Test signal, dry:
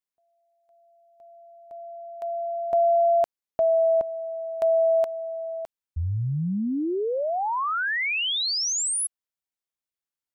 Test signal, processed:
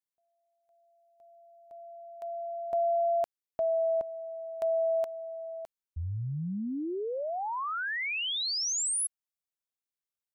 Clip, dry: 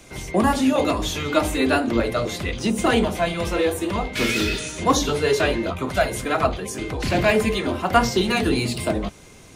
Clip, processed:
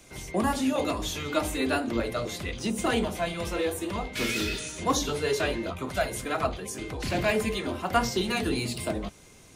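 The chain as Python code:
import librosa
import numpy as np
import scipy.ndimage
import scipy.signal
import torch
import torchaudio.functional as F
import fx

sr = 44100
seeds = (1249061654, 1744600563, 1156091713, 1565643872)

y = fx.high_shelf(x, sr, hz=5000.0, db=4.5)
y = y * librosa.db_to_amplitude(-7.5)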